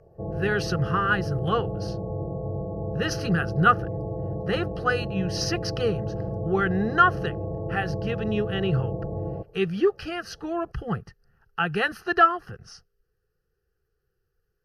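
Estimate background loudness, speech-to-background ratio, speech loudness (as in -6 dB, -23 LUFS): -32.0 LUFS, 6.0 dB, -26.0 LUFS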